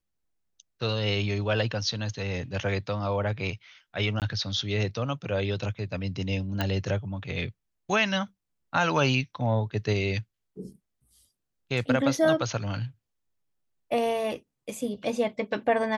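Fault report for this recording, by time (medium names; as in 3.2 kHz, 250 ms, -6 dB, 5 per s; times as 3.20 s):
4.20–4.22 s: dropout 18 ms
6.61 s: pop -14 dBFS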